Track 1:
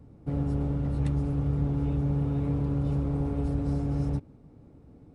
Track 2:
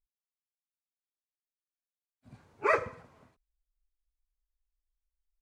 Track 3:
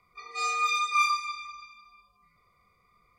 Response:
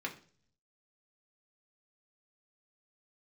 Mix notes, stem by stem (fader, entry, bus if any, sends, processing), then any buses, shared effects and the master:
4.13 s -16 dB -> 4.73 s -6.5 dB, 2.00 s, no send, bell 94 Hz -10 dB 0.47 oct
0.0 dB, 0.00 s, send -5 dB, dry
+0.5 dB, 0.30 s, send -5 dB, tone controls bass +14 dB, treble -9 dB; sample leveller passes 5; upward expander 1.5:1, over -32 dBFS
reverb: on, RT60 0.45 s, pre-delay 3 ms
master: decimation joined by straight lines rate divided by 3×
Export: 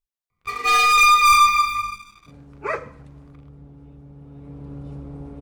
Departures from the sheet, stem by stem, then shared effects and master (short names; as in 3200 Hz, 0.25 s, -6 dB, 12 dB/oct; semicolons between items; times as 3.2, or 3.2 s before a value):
stem 2: send off; master: missing decimation joined by straight lines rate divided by 3×